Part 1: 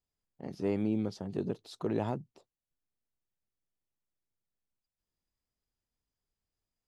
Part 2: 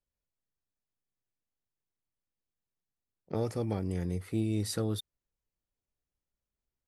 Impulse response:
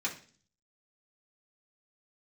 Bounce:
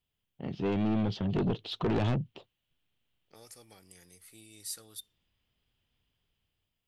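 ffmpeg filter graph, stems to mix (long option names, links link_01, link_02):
-filter_complex "[0:a]dynaudnorm=framelen=350:gausssize=5:maxgain=7dB,lowpass=frequency=3100:width_type=q:width=4.9,volume=1.5dB[link_01];[1:a]aderivative,volume=-0.5dB,asplit=2[link_02][link_03];[link_03]volume=-19.5dB[link_04];[2:a]atrim=start_sample=2205[link_05];[link_04][link_05]afir=irnorm=-1:irlink=0[link_06];[link_01][link_02][link_06]amix=inputs=3:normalize=0,equalizer=frequency=110:width=0.84:gain=7,asoftclip=type=tanh:threshold=-24.5dB"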